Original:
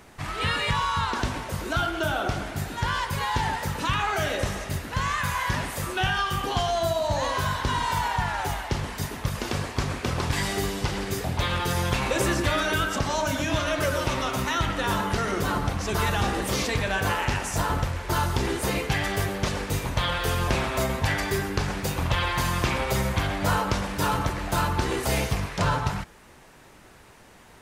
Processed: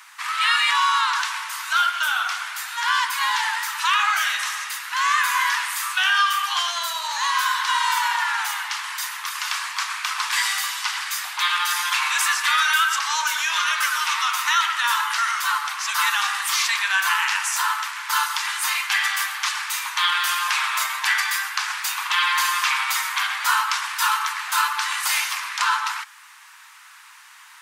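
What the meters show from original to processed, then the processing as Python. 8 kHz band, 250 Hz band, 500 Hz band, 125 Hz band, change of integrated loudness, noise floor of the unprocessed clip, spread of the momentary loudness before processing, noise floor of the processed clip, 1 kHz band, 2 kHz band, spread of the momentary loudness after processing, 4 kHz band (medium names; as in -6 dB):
+8.5 dB, under -40 dB, under -20 dB, under -40 dB, +5.0 dB, -51 dBFS, 5 LU, -47 dBFS, +5.5 dB, +8.5 dB, 7 LU, +8.5 dB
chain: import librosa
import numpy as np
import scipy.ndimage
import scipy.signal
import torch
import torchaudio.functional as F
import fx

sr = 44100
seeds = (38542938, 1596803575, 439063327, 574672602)

y = scipy.signal.sosfilt(scipy.signal.butter(8, 990.0, 'highpass', fs=sr, output='sos'), x)
y = y * librosa.db_to_amplitude(8.5)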